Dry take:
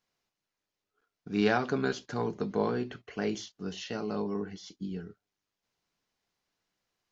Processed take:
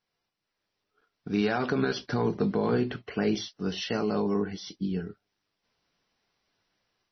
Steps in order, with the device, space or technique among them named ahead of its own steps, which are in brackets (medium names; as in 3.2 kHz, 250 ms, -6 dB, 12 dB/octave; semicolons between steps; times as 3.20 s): 2.08–3.40 s: peaking EQ 150 Hz +3 dB 2.8 oct; low-bitrate web radio (level rider gain up to 7 dB; peak limiter -16 dBFS, peak gain reduction 10.5 dB; MP3 24 kbps 24 kHz)